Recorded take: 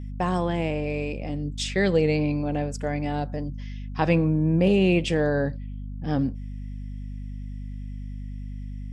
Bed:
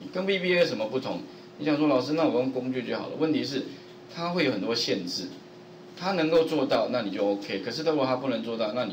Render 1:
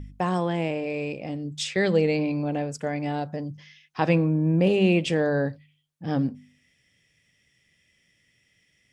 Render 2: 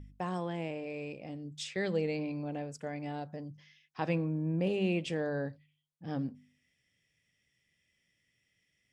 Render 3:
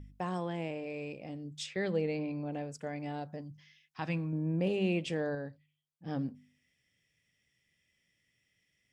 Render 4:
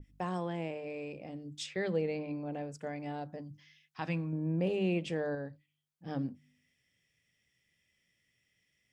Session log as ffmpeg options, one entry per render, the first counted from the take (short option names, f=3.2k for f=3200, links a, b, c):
-af "bandreject=f=50:t=h:w=4,bandreject=f=100:t=h:w=4,bandreject=f=150:t=h:w=4,bandreject=f=200:t=h:w=4,bandreject=f=250:t=h:w=4"
-af "volume=-10.5dB"
-filter_complex "[0:a]asettb=1/sr,asplit=3[a][b][c];[a]atrim=end=1.664[d];[b]atrim=start=1.66:end=2.53,asetpts=PTS-STARTPTS,afade=t=in:d=0.004:c=qsin,afade=t=out:st=0.866:d=0.004:c=qsin,lowpass=f=3.4k:p=1[e];[c]atrim=start=2.526[f];[d][e]acrossfade=d=0.004:c1=hsin:c2=qsin[g];[g][f]acrossfade=d=0.004:c1=qsin:c2=hsin,asettb=1/sr,asplit=3[h][i][j];[h]atrim=end=3.414[k];[i]atrim=start=3.41:end=4.33,asetpts=PTS-STARTPTS,afade=t=in:d=0.004:c=qsin,afade=t=out:st=0.916:d=0.004:c=qsin,equalizer=f=480:w=1.1:g=-9.5[l];[j]atrim=start=4.326[m];[k][l]acrossfade=d=0.004:c1=hsin:c2=qsin[n];[n][m]acrossfade=d=0.004:c1=qsin:c2=hsin,asplit=3[o][p][q];[o]atrim=end=5.352[r];[p]atrim=start=5.348:end=6.062,asetpts=PTS-STARTPTS,volume=-5dB[s];[q]atrim=start=6.058[t];[r][s]acrossfade=d=0.004:c1=hsin:c2=hsin[u];[u][t]acrossfade=d=0.004:c1=hsin:c2=hsin"
-af "bandreject=f=50:t=h:w=6,bandreject=f=100:t=h:w=6,bandreject=f=150:t=h:w=6,bandreject=f=200:t=h:w=6,bandreject=f=250:t=h:w=6,bandreject=f=300:t=h:w=6,adynamicequalizer=threshold=0.002:dfrequency=2200:dqfactor=0.7:tfrequency=2200:tqfactor=0.7:attack=5:release=100:ratio=0.375:range=2:mode=cutabove:tftype=highshelf"